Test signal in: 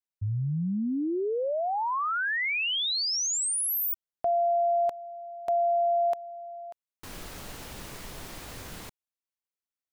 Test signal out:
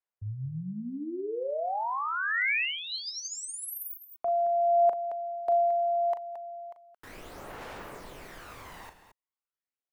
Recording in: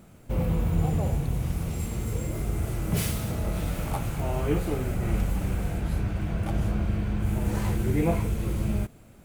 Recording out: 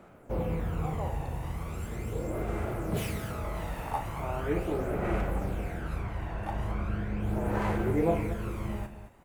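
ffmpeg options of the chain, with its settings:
-filter_complex "[0:a]acrossover=split=350 2300:gain=0.224 1 0.251[a][b][c];[a][b][c]amix=inputs=3:normalize=0,aecho=1:1:37.9|221.6:0.355|0.282,aphaser=in_gain=1:out_gain=1:delay=1.1:decay=0.46:speed=0.39:type=sinusoidal"

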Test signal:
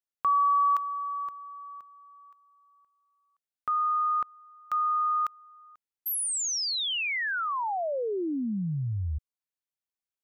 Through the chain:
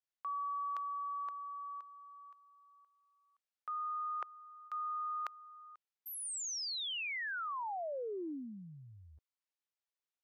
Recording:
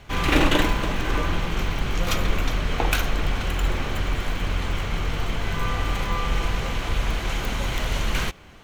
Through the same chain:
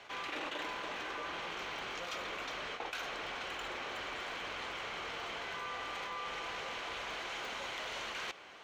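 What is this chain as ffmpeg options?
-filter_complex "[0:a]highpass=f=270:p=1,acrossover=split=360 6800:gain=0.178 1 0.178[a][b][c];[a][b][c]amix=inputs=3:normalize=0,areverse,acompressor=threshold=-37dB:ratio=6:attack=4.7:release=115:knee=1:detection=peak,areverse,volume=-1.5dB"

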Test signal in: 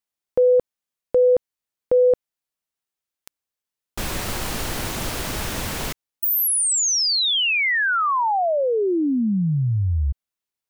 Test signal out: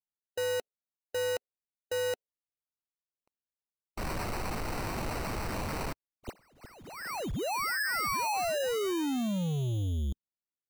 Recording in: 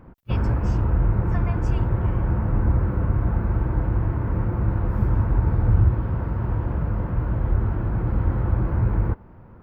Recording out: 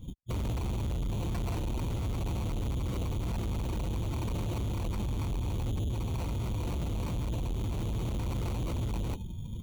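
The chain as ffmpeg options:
-filter_complex "[0:a]asplit=2[a][b];[b]alimiter=limit=-14dB:level=0:latency=1:release=255,volume=-0.5dB[c];[a][c]amix=inputs=2:normalize=0,equalizer=f=1.1k:t=o:w=1.6:g=5.5,asoftclip=type=tanh:threshold=-21.5dB,afftdn=nr=20:nf=-32,adynamicsmooth=sensitivity=1.5:basefreq=590,acrusher=samples=13:mix=1:aa=0.000001,areverse,acompressor=threshold=-38dB:ratio=6:attack=0.56:release=273:knee=1:detection=rms,areverse,volume=6dB"

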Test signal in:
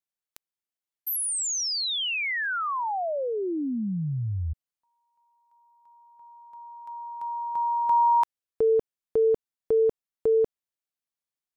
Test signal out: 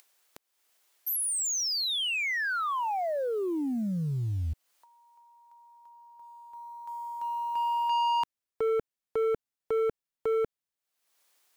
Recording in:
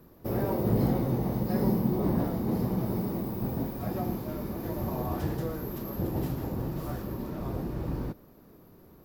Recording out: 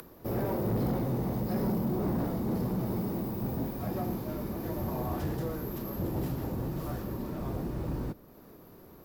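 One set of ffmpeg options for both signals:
-filter_complex "[0:a]acrossover=split=330[a][b];[b]acompressor=mode=upward:threshold=-51dB:ratio=2.5:attack=42:release=352:knee=2.83:detection=peak[c];[a][c]amix=inputs=2:normalize=0,acrusher=bits=7:mode=log:mix=0:aa=0.000001,asoftclip=type=tanh:threshold=-24.5dB"

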